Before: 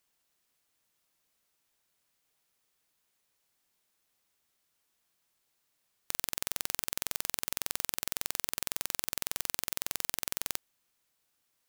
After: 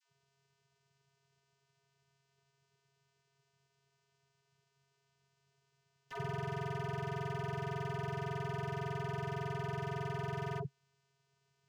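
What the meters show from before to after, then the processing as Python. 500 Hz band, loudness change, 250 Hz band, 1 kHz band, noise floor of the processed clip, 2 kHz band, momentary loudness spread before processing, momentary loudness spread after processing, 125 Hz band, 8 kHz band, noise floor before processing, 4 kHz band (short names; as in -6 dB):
+9.5 dB, -6.0 dB, +8.0 dB, +5.0 dB, -80 dBFS, -2.5 dB, 1 LU, 2 LU, +18.5 dB, -27.0 dB, -78 dBFS, -14.5 dB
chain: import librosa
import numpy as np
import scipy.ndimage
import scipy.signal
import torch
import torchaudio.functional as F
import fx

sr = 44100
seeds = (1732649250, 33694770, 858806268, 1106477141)

y = fx.dispersion(x, sr, late='lows', ms=90.0, hz=780.0)
y = fx.vocoder(y, sr, bands=8, carrier='square', carrier_hz=137.0)
y = fx.slew_limit(y, sr, full_power_hz=7.6)
y = F.gain(torch.from_numpy(y), 4.5).numpy()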